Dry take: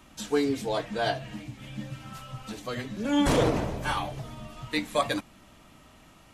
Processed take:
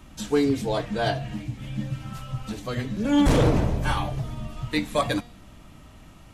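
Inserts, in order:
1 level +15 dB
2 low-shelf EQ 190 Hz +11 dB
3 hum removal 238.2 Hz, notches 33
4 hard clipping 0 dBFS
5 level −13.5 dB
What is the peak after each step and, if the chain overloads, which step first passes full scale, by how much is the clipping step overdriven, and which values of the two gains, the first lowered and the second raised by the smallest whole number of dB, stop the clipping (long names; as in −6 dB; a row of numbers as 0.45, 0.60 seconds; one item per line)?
+2.5, +7.5, +7.5, 0.0, −13.5 dBFS
step 1, 7.5 dB
step 1 +7 dB, step 5 −5.5 dB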